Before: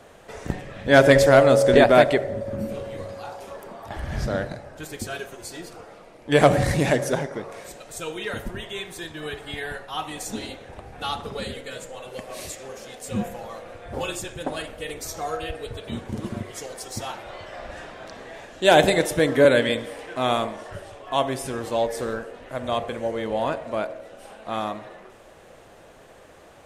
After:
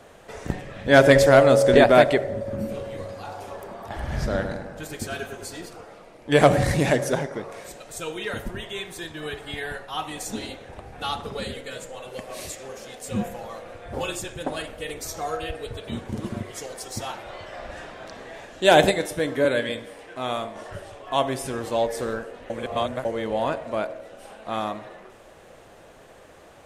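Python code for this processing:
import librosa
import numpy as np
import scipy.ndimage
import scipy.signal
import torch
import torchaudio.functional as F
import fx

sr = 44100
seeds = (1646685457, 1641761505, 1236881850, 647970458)

y = fx.echo_filtered(x, sr, ms=102, feedback_pct=60, hz=2000.0, wet_db=-6.0, at=(3.07, 5.66))
y = fx.comb_fb(y, sr, f0_hz=98.0, decay_s=0.31, harmonics='all', damping=0.0, mix_pct=60, at=(18.91, 20.56))
y = fx.edit(y, sr, fx.reverse_span(start_s=22.5, length_s=0.55), tone=tone)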